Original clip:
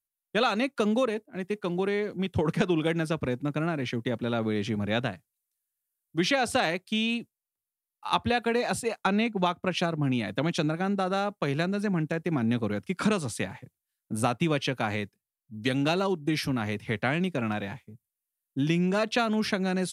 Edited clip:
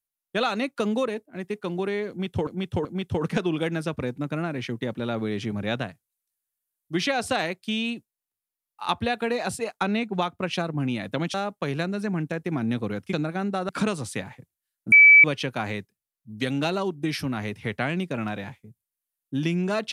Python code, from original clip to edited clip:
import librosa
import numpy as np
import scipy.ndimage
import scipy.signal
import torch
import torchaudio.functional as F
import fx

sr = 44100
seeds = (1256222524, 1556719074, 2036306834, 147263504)

y = fx.edit(x, sr, fx.repeat(start_s=2.09, length_s=0.38, count=3),
    fx.move(start_s=10.58, length_s=0.56, to_s=12.93),
    fx.bleep(start_s=14.16, length_s=0.32, hz=2300.0, db=-8.5), tone=tone)